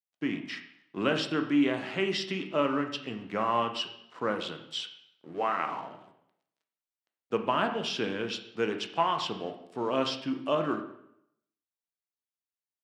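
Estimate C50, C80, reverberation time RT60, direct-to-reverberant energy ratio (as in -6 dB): 9.0 dB, 11.5 dB, 0.75 s, 5.0 dB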